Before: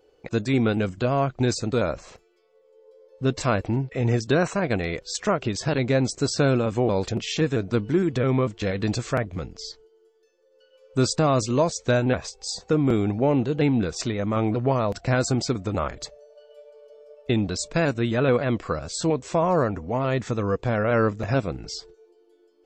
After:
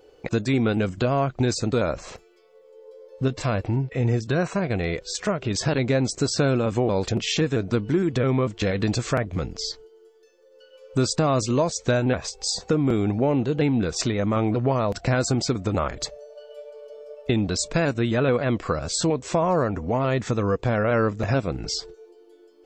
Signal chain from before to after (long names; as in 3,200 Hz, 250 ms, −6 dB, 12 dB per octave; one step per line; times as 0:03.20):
0:03.28–0:05.51: harmonic and percussive parts rebalanced percussive −8 dB
downward compressor 2 to 1, threshold −31 dBFS, peak gain reduction 8.5 dB
level +7 dB